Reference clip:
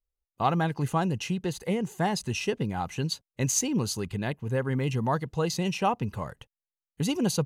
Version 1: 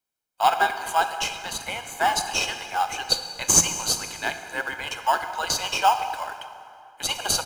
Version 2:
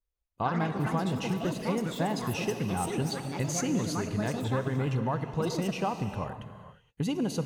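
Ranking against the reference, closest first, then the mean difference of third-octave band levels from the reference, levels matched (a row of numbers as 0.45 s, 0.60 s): 2, 1; 8.0 dB, 13.0 dB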